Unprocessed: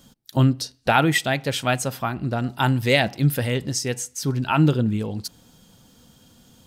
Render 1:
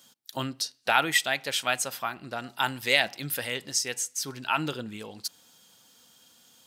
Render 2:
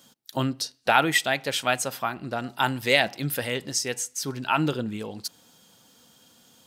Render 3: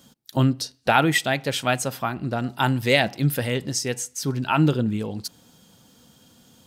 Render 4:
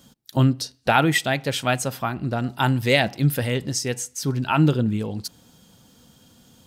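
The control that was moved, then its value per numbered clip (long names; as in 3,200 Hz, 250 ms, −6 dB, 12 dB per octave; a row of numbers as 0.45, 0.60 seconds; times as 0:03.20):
high-pass filter, corner frequency: 1,400, 540, 130, 51 Hertz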